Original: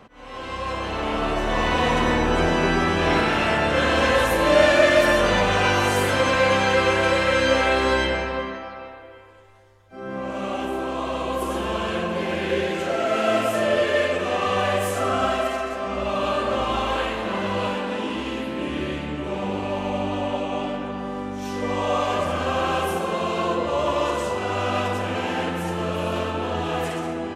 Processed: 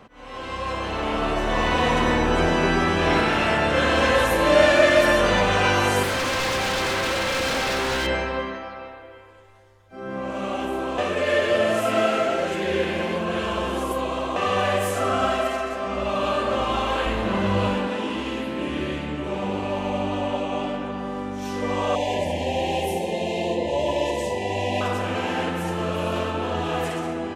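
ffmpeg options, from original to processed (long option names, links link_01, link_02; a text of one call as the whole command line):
ffmpeg -i in.wav -filter_complex "[0:a]asettb=1/sr,asplit=3[link_01][link_02][link_03];[link_01]atrim=end=6.034[link_04];[link_02]atrim=start=6.03:end=8.07,asetpts=PTS-STARTPTS,afade=type=in:duration=0.004:curve=qsin,afade=type=out:start_time=2.036:duration=0.004:curve=qsin,aeval=exprs='0.112*(abs(mod(val(0)/0.112+3,4)-2)-1)':channel_layout=same[link_05];[link_03]atrim=start=8.066[link_06];[link_04][link_05]acrossfade=duration=0.004:curve1=hsin:curve2=qsin[link_07];[link_07][link_06]acrossfade=duration=0.004:curve1=qsin:curve2=hsin,asettb=1/sr,asplit=3[link_08][link_09][link_10];[link_08]atrim=end=17.064[link_11];[link_09]atrim=start=17.06:end=17.88,asetpts=PTS-STARTPTS,afade=type=in:duration=0.004:curve=qsin,afade=type=out:start_time=0.816:duration=0.004:curve=qsin,lowshelf=frequency=180:gain=12[link_12];[link_10]atrim=start=17.876[link_13];[link_11][link_12]acrossfade=duration=0.004:curve1=hsin:curve2=qsin[link_14];[link_14][link_13]acrossfade=duration=0.004:curve1=qsin:curve2=hsin,asettb=1/sr,asplit=3[link_15][link_16][link_17];[link_15]atrim=end=21.954[link_18];[link_16]atrim=start=21.95:end=24.81,asetpts=PTS-STARTPTS,afade=type=in:duration=0.004:curve=qsin,afade=type=out:start_time=2.856:duration=0.004:curve=qsin,asuperstop=centerf=1300:order=20:qfactor=1.8[link_19];[link_17]atrim=start=24.806[link_20];[link_18][link_19]acrossfade=duration=0.004:curve1=hsin:curve2=qsin[link_21];[link_21][link_20]acrossfade=duration=0.004:curve1=qsin:curve2=hsin,asplit=3[link_22][link_23][link_24];[link_22]atrim=end=10.982[link_25];[link_23]atrim=start=10.978:end=14.362,asetpts=PTS-STARTPTS,areverse[link_26];[link_24]atrim=start=14.358[link_27];[link_25][link_26]acrossfade=duration=0.004:curve1=hsin:curve2=hsin[link_28];[link_28][link_27]acrossfade=duration=0.004:curve1=hsin:curve2=hsin" out.wav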